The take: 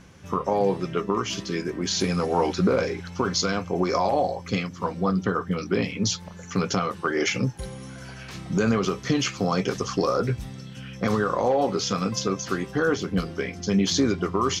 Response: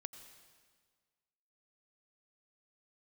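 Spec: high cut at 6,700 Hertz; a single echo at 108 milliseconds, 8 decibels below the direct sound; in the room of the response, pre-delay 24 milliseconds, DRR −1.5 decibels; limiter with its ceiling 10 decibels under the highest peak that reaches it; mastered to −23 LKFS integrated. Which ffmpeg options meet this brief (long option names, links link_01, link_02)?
-filter_complex "[0:a]lowpass=6700,alimiter=limit=-19.5dB:level=0:latency=1,aecho=1:1:108:0.398,asplit=2[link_01][link_02];[1:a]atrim=start_sample=2205,adelay=24[link_03];[link_02][link_03]afir=irnorm=-1:irlink=0,volume=5.5dB[link_04];[link_01][link_04]amix=inputs=2:normalize=0,volume=3dB"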